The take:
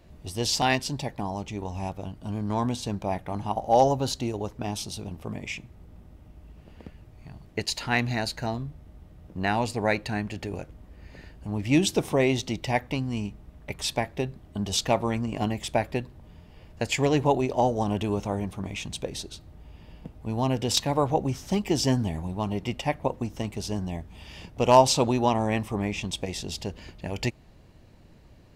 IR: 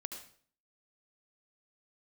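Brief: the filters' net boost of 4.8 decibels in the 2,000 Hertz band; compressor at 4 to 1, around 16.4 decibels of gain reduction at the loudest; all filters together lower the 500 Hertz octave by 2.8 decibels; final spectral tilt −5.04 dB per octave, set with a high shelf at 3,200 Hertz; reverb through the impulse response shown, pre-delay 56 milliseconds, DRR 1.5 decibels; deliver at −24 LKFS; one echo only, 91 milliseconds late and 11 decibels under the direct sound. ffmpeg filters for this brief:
-filter_complex "[0:a]equalizer=frequency=500:width_type=o:gain=-4,equalizer=frequency=2000:width_type=o:gain=8.5,highshelf=frequency=3200:gain=-7.5,acompressor=threshold=-32dB:ratio=4,aecho=1:1:91:0.282,asplit=2[link_01][link_02];[1:a]atrim=start_sample=2205,adelay=56[link_03];[link_02][link_03]afir=irnorm=-1:irlink=0,volume=0.5dB[link_04];[link_01][link_04]amix=inputs=2:normalize=0,volume=10dB"

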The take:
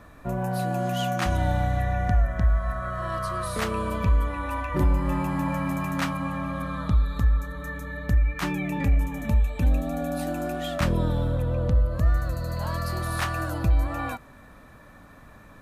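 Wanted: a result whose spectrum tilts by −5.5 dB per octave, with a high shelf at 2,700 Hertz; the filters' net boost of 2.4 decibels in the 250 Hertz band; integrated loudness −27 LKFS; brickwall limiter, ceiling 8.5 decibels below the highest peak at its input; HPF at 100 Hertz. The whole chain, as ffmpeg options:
ffmpeg -i in.wav -af "highpass=100,equalizer=frequency=250:width_type=o:gain=3.5,highshelf=frequency=2700:gain=7,volume=2dB,alimiter=limit=-16dB:level=0:latency=1" out.wav

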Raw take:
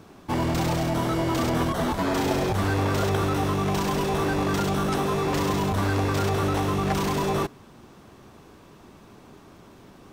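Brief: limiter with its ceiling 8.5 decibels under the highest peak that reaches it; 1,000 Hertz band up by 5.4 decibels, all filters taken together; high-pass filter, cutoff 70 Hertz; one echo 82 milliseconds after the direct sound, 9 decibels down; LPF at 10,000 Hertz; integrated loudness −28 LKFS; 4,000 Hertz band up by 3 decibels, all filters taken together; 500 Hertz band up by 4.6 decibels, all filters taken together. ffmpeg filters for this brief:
ffmpeg -i in.wav -af "highpass=70,lowpass=10000,equalizer=frequency=500:width_type=o:gain=5,equalizer=frequency=1000:width_type=o:gain=5,equalizer=frequency=4000:width_type=o:gain=3.5,alimiter=limit=-14.5dB:level=0:latency=1,aecho=1:1:82:0.355,volume=-5.5dB" out.wav

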